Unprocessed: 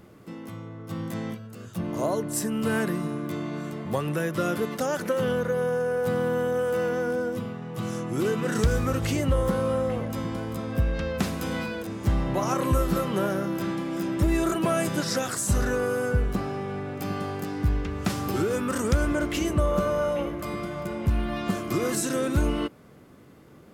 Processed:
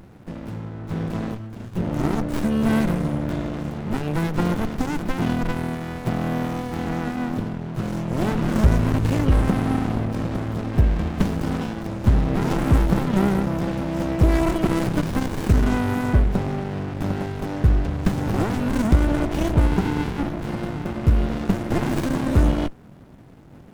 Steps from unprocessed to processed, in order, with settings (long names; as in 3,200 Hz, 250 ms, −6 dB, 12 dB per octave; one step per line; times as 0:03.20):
notch filter 4,600 Hz, Q 14
windowed peak hold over 65 samples
level +7.5 dB